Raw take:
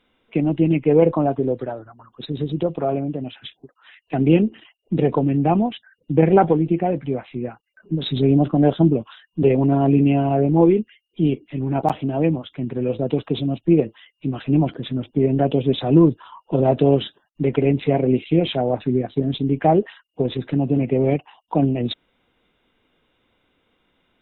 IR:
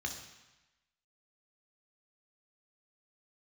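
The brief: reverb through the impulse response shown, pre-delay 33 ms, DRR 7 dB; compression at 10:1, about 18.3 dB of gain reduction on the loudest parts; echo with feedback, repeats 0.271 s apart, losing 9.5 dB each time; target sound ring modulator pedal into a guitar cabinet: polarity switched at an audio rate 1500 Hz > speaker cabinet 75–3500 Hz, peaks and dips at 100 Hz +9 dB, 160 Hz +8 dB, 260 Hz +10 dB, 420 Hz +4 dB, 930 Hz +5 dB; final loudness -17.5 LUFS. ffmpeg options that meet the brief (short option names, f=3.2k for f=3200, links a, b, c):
-filter_complex "[0:a]acompressor=threshold=-28dB:ratio=10,aecho=1:1:271|542|813|1084:0.335|0.111|0.0365|0.012,asplit=2[a][b];[1:a]atrim=start_sample=2205,adelay=33[c];[b][c]afir=irnorm=-1:irlink=0,volume=-9dB[d];[a][d]amix=inputs=2:normalize=0,aeval=exprs='val(0)*sgn(sin(2*PI*1500*n/s))':c=same,highpass=75,equalizer=f=100:t=q:w=4:g=9,equalizer=f=160:t=q:w=4:g=8,equalizer=f=260:t=q:w=4:g=10,equalizer=f=420:t=q:w=4:g=4,equalizer=f=930:t=q:w=4:g=5,lowpass=f=3.5k:w=0.5412,lowpass=f=3.5k:w=1.3066,volume=13dB"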